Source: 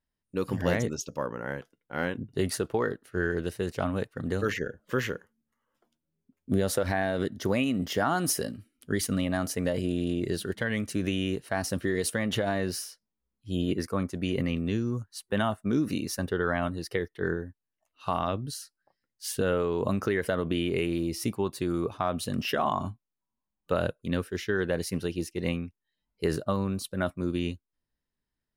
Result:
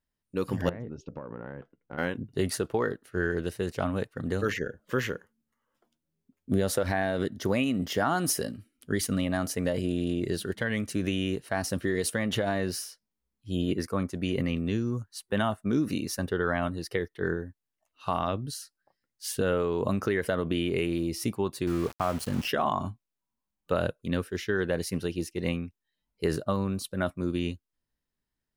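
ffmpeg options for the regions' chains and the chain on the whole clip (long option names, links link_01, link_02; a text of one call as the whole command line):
ffmpeg -i in.wav -filter_complex "[0:a]asettb=1/sr,asplit=3[link_01][link_02][link_03];[link_01]atrim=end=0.694[link_04];[link_02]atrim=start=0.69:end=1.98,asetpts=PTS-STARTPTS,afade=type=in:duration=0.004:curve=qsin,afade=type=out:start_time=1.286:duration=0.004:curve=qsin,lowpass=1800,acompressor=threshold=-37dB:ratio=20:attack=3.2:release=140:knee=1:detection=peak,lowshelf=frequency=490:gain=6[link_05];[link_03]atrim=start=1.976[link_06];[link_04][link_05]acrossfade=duration=0.004:curve1=hsin:curve2=qsin[link_07];[link_07][link_06]acrossfade=duration=0.004:curve1=qsin:curve2=hsin,asettb=1/sr,asplit=3[link_08][link_09][link_10];[link_08]atrim=end=21.674[link_11];[link_09]atrim=start=21.67:end=22.48,asetpts=PTS-STARTPTS,afade=type=in:duration=0.004:curve=qsin,afade=type=out:start_time=0.806:duration=0.004:curve=qsin,asuperstop=centerf=3700:order=20:qfactor=5.7,lowshelf=frequency=100:gain=6,aeval=exprs='val(0)*gte(abs(val(0)),0.0158)':channel_layout=same[link_12];[link_10]atrim=start=22.476[link_13];[link_11][link_12]acrossfade=duration=0.004:curve1=hsin:curve2=qsin[link_14];[link_14][link_13]acrossfade=duration=0.004:curve1=qsin:curve2=hsin" out.wav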